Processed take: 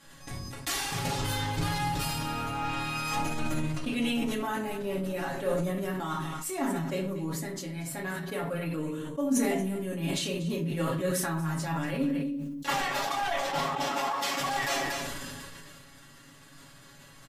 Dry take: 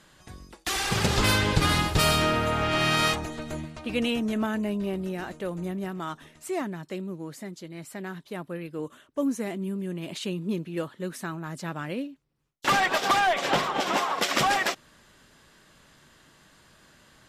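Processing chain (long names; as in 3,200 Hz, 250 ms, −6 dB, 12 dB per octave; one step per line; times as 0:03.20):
high-shelf EQ 8,000 Hz +8.5 dB
comb filter 7.2 ms, depth 83%
dynamic equaliser 870 Hz, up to +7 dB, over −44 dBFS, Q 6.6
reversed playback
downward compressor 16 to 1, threshold −28 dBFS, peak gain reduction 15.5 dB
reversed playback
transient designer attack +5 dB, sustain −4 dB
on a send: single-tap delay 236 ms −14.5 dB
on the sum: rectangular room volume 450 cubic metres, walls furnished, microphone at 2.3 metres
level that may fall only so fast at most 21 dB per second
level −4.5 dB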